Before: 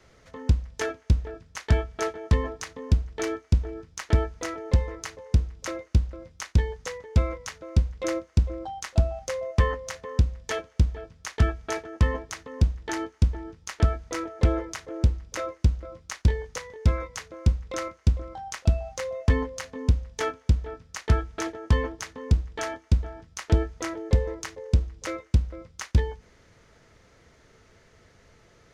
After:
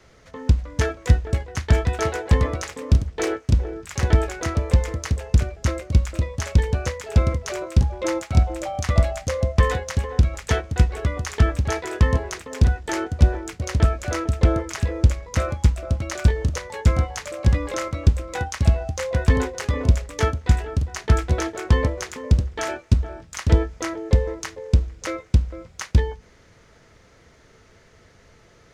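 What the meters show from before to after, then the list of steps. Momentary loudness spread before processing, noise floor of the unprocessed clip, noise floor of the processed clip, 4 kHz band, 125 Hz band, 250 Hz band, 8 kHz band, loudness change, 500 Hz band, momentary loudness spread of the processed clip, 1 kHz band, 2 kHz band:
11 LU, −58 dBFS, −53 dBFS, +5.0 dB, +5.5 dB, +5.0 dB, +5.0 dB, +5.0 dB, +5.0 dB, 6 LU, +5.5 dB, +5.5 dB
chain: delay with pitch and tempo change per echo 350 ms, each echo +2 semitones, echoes 2, each echo −6 dB
level +4 dB

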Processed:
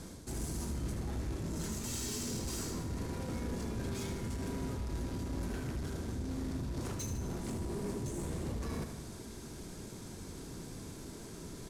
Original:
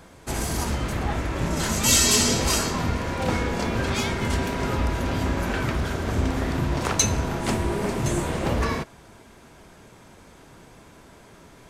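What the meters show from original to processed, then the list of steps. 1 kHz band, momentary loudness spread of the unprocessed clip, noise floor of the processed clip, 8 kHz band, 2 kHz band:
−19.5 dB, 9 LU, −47 dBFS, −18.0 dB, −21.0 dB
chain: variable-slope delta modulation 64 kbit/s
flat-topped bell 1,300 Hz −10 dB 2.9 octaves
reversed playback
downward compressor 5 to 1, threshold −38 dBFS, peak gain reduction 17 dB
reversed playback
soft clipping −37.5 dBFS, distortion −13 dB
on a send: repeating echo 76 ms, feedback 54%, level −8.5 dB
on the sum: dynamic equaliser 4,500 Hz, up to −5 dB, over −59 dBFS, Q 1.2
level +4.5 dB

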